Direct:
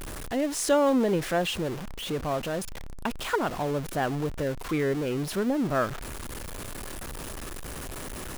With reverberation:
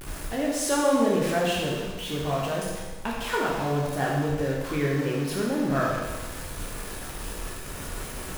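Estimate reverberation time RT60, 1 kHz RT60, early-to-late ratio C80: 1.3 s, 1.3 s, 2.5 dB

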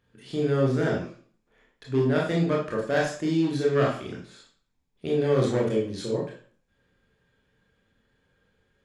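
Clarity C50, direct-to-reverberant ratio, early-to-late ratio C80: 5.0 dB, -3.0 dB, 10.0 dB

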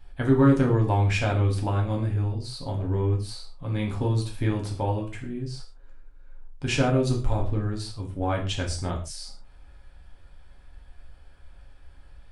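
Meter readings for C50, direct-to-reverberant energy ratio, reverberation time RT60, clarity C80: 9.0 dB, -1.0 dB, no single decay rate, 13.0 dB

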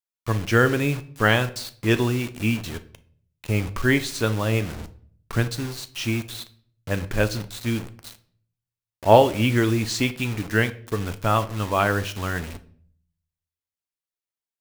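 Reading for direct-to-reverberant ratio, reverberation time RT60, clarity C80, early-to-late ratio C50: 10.0 dB, 0.55 s, 21.0 dB, 16.5 dB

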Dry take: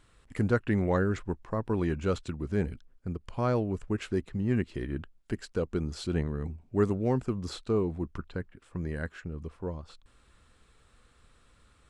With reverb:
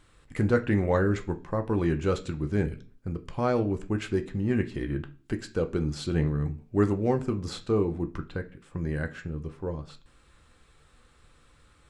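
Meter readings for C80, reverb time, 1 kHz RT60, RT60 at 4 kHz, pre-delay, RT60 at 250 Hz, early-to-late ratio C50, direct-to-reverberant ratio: 22.0 dB, 0.40 s, 0.35 s, 0.45 s, 3 ms, 0.55 s, 16.0 dB, 5.5 dB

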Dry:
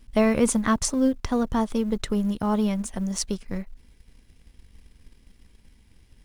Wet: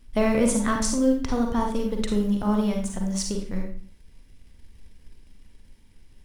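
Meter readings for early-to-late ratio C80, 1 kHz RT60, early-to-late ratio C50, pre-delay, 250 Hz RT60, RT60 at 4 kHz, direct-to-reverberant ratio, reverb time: 9.5 dB, 0.50 s, 4.0 dB, 38 ms, 0.60 s, 0.40 s, 1.5 dB, 0.50 s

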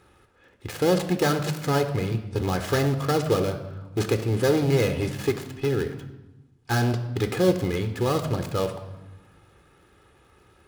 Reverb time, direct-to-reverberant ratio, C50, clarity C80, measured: 1.0 s, 8.0 dB, 10.5 dB, 12.5 dB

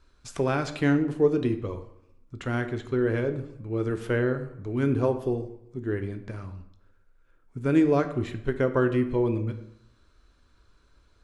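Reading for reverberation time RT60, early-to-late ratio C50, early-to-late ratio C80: 0.80 s, 12.0 dB, 14.0 dB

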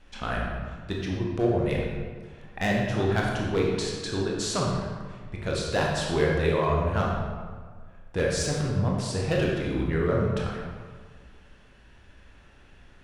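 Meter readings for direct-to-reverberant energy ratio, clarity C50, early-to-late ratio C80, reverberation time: -2.5 dB, 1.0 dB, 3.0 dB, 1.6 s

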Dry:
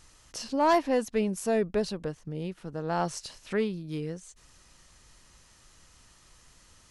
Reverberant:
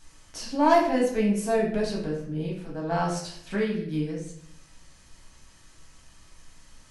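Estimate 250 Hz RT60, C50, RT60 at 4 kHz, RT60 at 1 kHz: 0.85 s, 4.5 dB, 0.50 s, 0.60 s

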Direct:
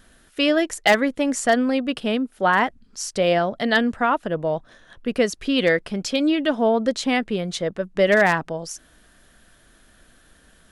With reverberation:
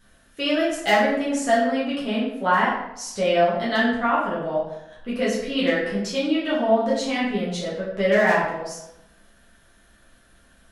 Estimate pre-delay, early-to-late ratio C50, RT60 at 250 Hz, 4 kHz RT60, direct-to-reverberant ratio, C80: 6 ms, 2.5 dB, 0.85 s, 0.55 s, -8.5 dB, 5.5 dB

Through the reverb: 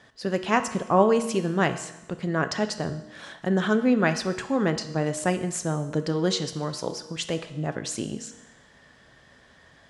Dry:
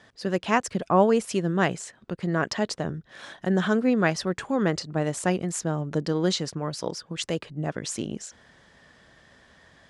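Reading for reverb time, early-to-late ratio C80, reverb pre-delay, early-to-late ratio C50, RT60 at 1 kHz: 1.0 s, 13.5 dB, 5 ms, 11.5 dB, 1.0 s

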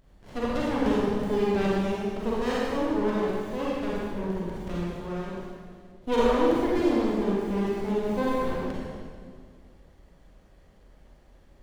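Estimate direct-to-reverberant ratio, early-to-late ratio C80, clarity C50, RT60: -7.0 dB, -1.5 dB, -4.5 dB, 1.9 s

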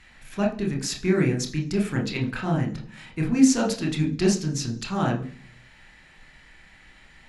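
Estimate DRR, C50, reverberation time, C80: 0.5 dB, 11.5 dB, 0.50 s, 16.0 dB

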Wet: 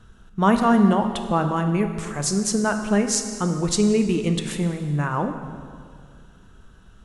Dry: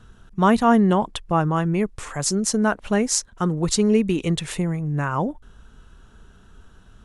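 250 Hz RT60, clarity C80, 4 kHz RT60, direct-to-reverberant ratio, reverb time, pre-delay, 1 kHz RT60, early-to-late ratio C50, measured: 2.3 s, 9.0 dB, 1.7 s, 6.0 dB, 2.0 s, 6 ms, 2.0 s, 7.5 dB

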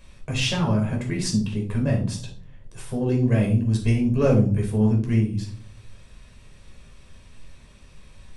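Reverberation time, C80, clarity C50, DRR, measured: 0.45 s, 13.5 dB, 7.5 dB, -0.5 dB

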